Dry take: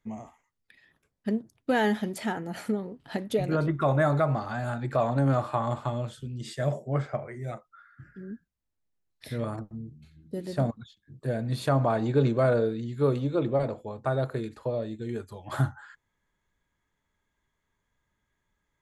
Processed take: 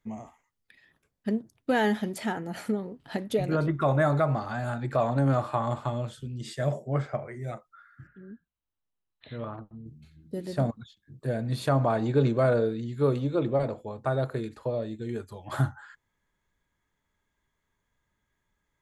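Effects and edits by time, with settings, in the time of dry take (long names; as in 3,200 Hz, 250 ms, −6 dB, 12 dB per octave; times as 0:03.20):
0:08.07–0:09.86: Chebyshev low-pass with heavy ripple 4,100 Hz, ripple 6 dB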